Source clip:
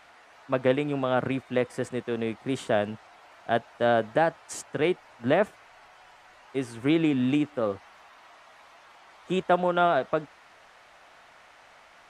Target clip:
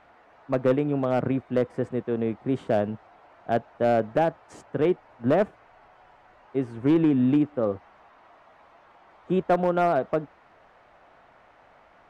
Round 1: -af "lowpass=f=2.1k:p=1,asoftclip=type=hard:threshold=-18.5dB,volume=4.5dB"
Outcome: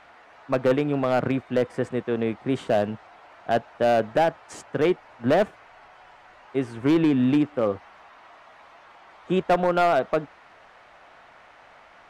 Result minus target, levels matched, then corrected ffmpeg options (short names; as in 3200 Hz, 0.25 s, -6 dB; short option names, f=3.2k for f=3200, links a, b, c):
2000 Hz band +4.0 dB
-af "lowpass=f=610:p=1,asoftclip=type=hard:threshold=-18.5dB,volume=4.5dB"